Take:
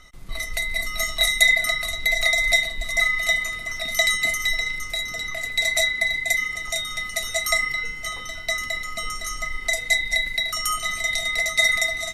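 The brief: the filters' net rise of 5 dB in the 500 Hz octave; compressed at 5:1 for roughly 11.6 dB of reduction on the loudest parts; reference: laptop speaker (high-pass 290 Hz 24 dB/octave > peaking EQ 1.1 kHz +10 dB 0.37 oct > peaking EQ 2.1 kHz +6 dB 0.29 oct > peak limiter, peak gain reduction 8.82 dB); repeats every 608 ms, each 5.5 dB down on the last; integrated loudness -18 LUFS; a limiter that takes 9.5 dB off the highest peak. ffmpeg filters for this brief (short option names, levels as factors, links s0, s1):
-af "equalizer=f=500:t=o:g=7,acompressor=threshold=0.0501:ratio=5,alimiter=limit=0.0794:level=0:latency=1,highpass=f=290:w=0.5412,highpass=f=290:w=1.3066,equalizer=f=1100:t=o:w=0.37:g=10,equalizer=f=2100:t=o:w=0.29:g=6,aecho=1:1:608|1216|1824|2432|3040|3648|4256:0.531|0.281|0.149|0.079|0.0419|0.0222|0.0118,volume=3.35,alimiter=limit=0.224:level=0:latency=1"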